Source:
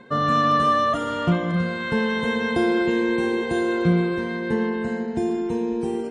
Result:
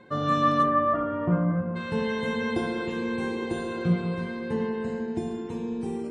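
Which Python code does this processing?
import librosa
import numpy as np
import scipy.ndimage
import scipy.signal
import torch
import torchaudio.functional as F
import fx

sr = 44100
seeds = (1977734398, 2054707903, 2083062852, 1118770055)

y = fx.lowpass(x, sr, hz=fx.line((0.62, 2300.0), (1.75, 1400.0)), slope=24, at=(0.62, 1.75), fade=0.02)
y = fx.rev_fdn(y, sr, rt60_s=0.6, lf_ratio=1.45, hf_ratio=0.5, size_ms=55.0, drr_db=3.0)
y = y * 10.0 ** (-6.0 / 20.0)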